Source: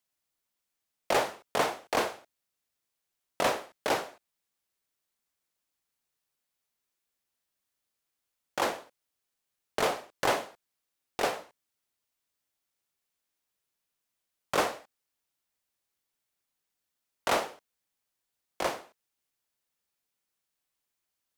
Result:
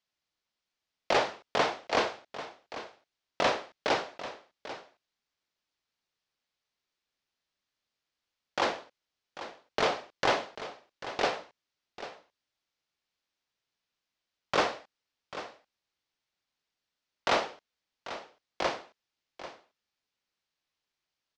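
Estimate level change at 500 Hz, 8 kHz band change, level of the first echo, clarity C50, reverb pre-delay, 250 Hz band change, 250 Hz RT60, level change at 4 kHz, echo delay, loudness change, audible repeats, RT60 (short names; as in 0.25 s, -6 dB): +0.5 dB, -5.0 dB, -13.5 dB, none, none, 0.0 dB, none, +2.5 dB, 0.792 s, -0.5 dB, 1, none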